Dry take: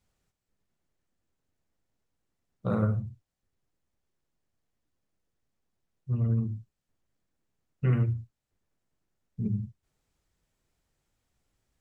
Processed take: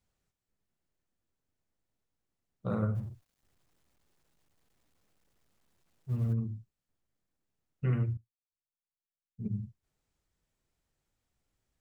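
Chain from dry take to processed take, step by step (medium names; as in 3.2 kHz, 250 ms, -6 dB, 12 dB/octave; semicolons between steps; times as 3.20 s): 2.95–6.33 s: companding laws mixed up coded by mu; 8.17–9.51 s: upward expansion 2.5:1, over -43 dBFS; trim -4.5 dB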